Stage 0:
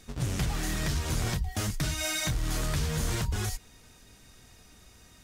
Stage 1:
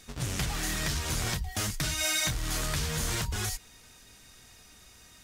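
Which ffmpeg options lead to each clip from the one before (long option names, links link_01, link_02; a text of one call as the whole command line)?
ffmpeg -i in.wav -af "tiltshelf=frequency=810:gain=-3.5" out.wav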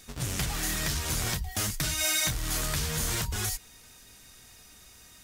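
ffmpeg -i in.wav -af "highshelf=frequency=11000:gain=9" out.wav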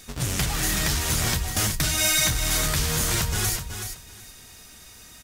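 ffmpeg -i in.wav -af "aecho=1:1:376|752|1128:0.398|0.0717|0.0129,volume=5.5dB" out.wav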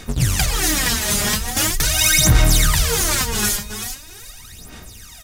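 ffmpeg -i in.wav -af "aphaser=in_gain=1:out_gain=1:delay=4.9:decay=0.75:speed=0.42:type=sinusoidal,volume=2.5dB" out.wav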